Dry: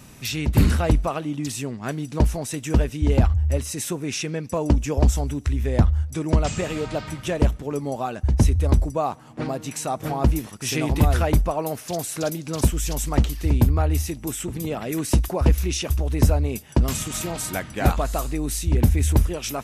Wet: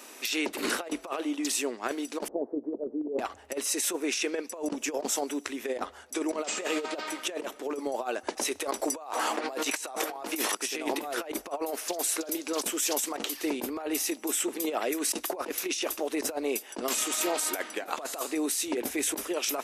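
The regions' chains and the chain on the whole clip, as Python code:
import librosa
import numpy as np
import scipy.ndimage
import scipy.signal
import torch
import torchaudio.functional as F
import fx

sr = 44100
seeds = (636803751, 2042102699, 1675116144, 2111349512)

y = fx.chain(x, sr, fx.sample_sort(block=8),
    fx.cheby2_lowpass(hz=2600.0, order=4, stop_db=70),
    fx.over_compress(threshold_db=-24.0, ratio=-1.0), at=(2.28, 3.19))
y = fx.chain(y, sr, fx.low_shelf(hz=340.0, db=-12.0),
    fx.env_flatten(amount_pct=70), at=(8.27, 10.55))
y = scipy.signal.sosfilt(scipy.signal.cheby2(4, 40, 160.0, 'highpass', fs=sr, output='sos'), y)
y = fx.over_compress(y, sr, threshold_db=-30.0, ratio=-0.5)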